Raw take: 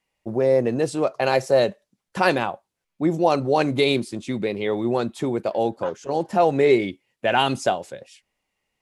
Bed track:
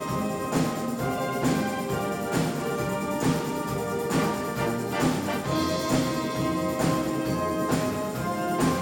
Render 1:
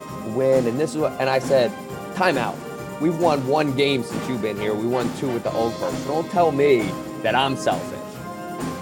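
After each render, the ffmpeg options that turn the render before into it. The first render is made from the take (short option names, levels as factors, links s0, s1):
-filter_complex "[1:a]volume=0.596[s0];[0:a][s0]amix=inputs=2:normalize=0"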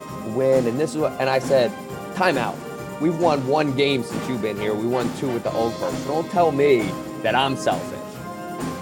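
-filter_complex "[0:a]asettb=1/sr,asplit=3[s0][s1][s2];[s0]atrim=end=2.954[s3];[s1]atrim=start=2.95:end=3.9,asetpts=PTS-STARTPTS,afade=t=in:d=0.004:c=qsin,afade=t=out:st=0.946:d=0.004:c=qsin,acrossover=split=8400[s4][s5];[s5]acompressor=threshold=0.00224:ratio=4:attack=1:release=60[s6];[s4][s6]amix=inputs=2:normalize=0[s7];[s2]atrim=start=3.896[s8];[s3][s7]acrossfade=d=0.004:c1=hsin:c2=qsin[s9];[s9][s8]acrossfade=d=0.004:c1=qsin:c2=hsin"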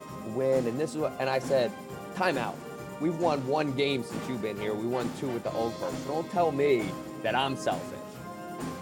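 -af "volume=0.398"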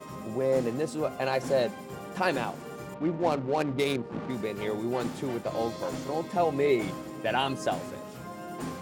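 -filter_complex "[0:a]asettb=1/sr,asplit=3[s0][s1][s2];[s0]atrim=end=2.944[s3];[s1]atrim=start=2.94:end=4.3,asetpts=PTS-STARTPTS,afade=t=in:d=0.004:c=qsin,afade=t=out:st=1.356:d=0.004:c=qsin,adynamicsmooth=sensitivity=5.5:basefreq=640[s4];[s2]atrim=start=4.296[s5];[s3][s4]acrossfade=d=0.004:c1=hsin:c2=qsin[s6];[s6][s5]acrossfade=d=0.004:c1=qsin:c2=hsin"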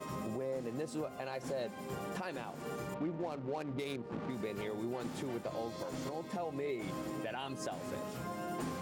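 -af "acompressor=threshold=0.02:ratio=3,alimiter=level_in=1.78:limit=0.0631:level=0:latency=1:release=254,volume=0.562"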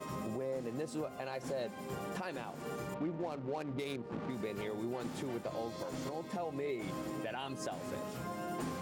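-af anull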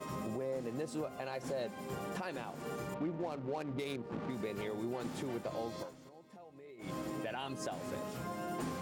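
-filter_complex "[0:a]asplit=3[s0][s1][s2];[s0]atrim=end=5.94,asetpts=PTS-STARTPTS,afade=t=out:st=5.79:d=0.15:silence=0.158489[s3];[s1]atrim=start=5.94:end=6.77,asetpts=PTS-STARTPTS,volume=0.158[s4];[s2]atrim=start=6.77,asetpts=PTS-STARTPTS,afade=t=in:d=0.15:silence=0.158489[s5];[s3][s4][s5]concat=n=3:v=0:a=1"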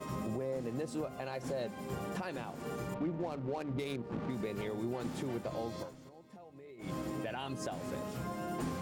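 -af "lowshelf=f=140:g=9,bandreject=f=50:t=h:w=6,bandreject=f=100:t=h:w=6,bandreject=f=150:t=h:w=6"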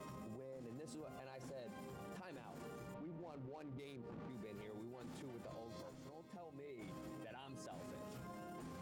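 -af "acompressor=threshold=0.00355:ratio=2,alimiter=level_in=10:limit=0.0631:level=0:latency=1:release=27,volume=0.1"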